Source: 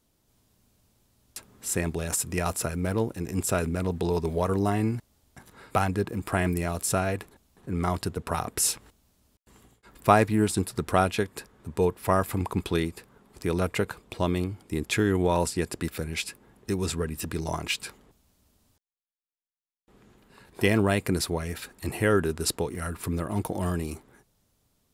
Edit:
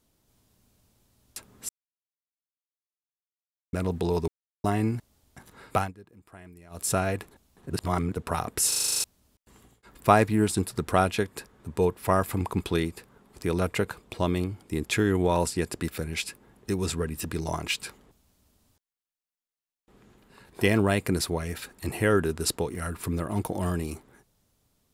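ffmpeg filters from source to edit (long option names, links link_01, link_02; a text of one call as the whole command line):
ffmpeg -i in.wav -filter_complex "[0:a]asplit=18[link_01][link_02][link_03][link_04][link_05][link_06][link_07][link_08][link_09][link_10][link_11][link_12][link_13][link_14][link_15][link_16][link_17][link_18];[link_01]atrim=end=1.69,asetpts=PTS-STARTPTS,afade=type=out:start_time=1.686:duration=0.004:curve=hsin[link_19];[link_02]atrim=start=1.69:end=3.73,asetpts=PTS-STARTPTS,volume=0[link_20];[link_03]atrim=start=3.73:end=4.28,asetpts=PTS-STARTPTS,afade=type=in:duration=0.004:curve=hsin,afade=type=out:start_time=0.546:duration=0.004:curve=hsin[link_21];[link_04]atrim=start=4.28:end=4.64,asetpts=PTS-STARTPTS,volume=0[link_22];[link_05]atrim=start=4.64:end=5.93,asetpts=PTS-STARTPTS,afade=type=in:duration=0.004:curve=hsin,afade=type=out:start_time=1.12:duration=0.17:silence=0.0749894[link_23];[link_06]atrim=start=5.93:end=6.7,asetpts=PTS-STARTPTS,volume=-22.5dB[link_24];[link_07]atrim=start=6.7:end=7.702,asetpts=PTS-STARTPTS,afade=type=in:duration=0.17:silence=0.0749894[link_25];[link_08]atrim=start=7.698:end=8.122,asetpts=PTS-STARTPTS,areverse[link_26];[link_09]atrim=start=8.118:end=8.722[link_27];[link_10]atrim=start=8.678:end=8.722[link_28];[link_11]atrim=start=8.678:end=8.722[link_29];[link_12]atrim=start=8.678:end=8.722[link_30];[link_13]atrim=start=8.678:end=8.722[link_31];[link_14]atrim=start=8.678:end=8.722[link_32];[link_15]atrim=start=8.678:end=8.722[link_33];[link_16]atrim=start=8.678:end=8.722[link_34];[link_17]atrim=start=8.678:end=8.722[link_35];[link_18]atrim=start=9.038[link_36];[link_19][link_20][link_21][link_22][link_23][link_24][link_25]concat=n=7:v=0:a=1[link_37];[link_37][link_26]acrossfade=duration=0.004:curve1=hsin:curve2=hsin[link_38];[link_38][link_27]acrossfade=duration=0.004:curve1=hsin:curve2=hsin[link_39];[link_39][link_28]acrossfade=duration=0.004:curve1=hsin:curve2=hsin[link_40];[link_40][link_29]acrossfade=duration=0.004:curve1=hsin:curve2=hsin[link_41];[link_41][link_30]acrossfade=duration=0.004:curve1=hsin:curve2=hsin[link_42];[link_42][link_31]acrossfade=duration=0.004:curve1=hsin:curve2=hsin[link_43];[link_43][link_32]acrossfade=duration=0.004:curve1=hsin:curve2=hsin[link_44];[link_44][link_33]acrossfade=duration=0.004:curve1=hsin:curve2=hsin[link_45];[link_45][link_34]acrossfade=duration=0.004:curve1=hsin:curve2=hsin[link_46];[link_46][link_35]acrossfade=duration=0.004:curve1=hsin:curve2=hsin[link_47];[link_47][link_36]acrossfade=duration=0.004:curve1=hsin:curve2=hsin" out.wav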